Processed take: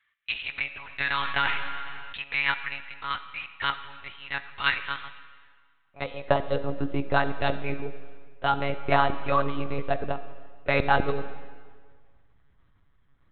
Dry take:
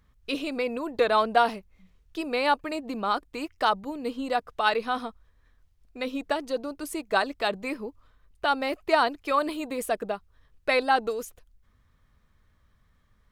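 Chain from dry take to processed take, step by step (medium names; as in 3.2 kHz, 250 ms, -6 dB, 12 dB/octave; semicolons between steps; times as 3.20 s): high-pass sweep 1.9 kHz -> 100 Hz, 5.25–7.68 s; monotone LPC vocoder at 8 kHz 140 Hz; algorithmic reverb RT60 1.7 s, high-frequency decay 0.85×, pre-delay 0 ms, DRR 11 dB; 0.81–2.19 s: decay stretcher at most 21 dB/s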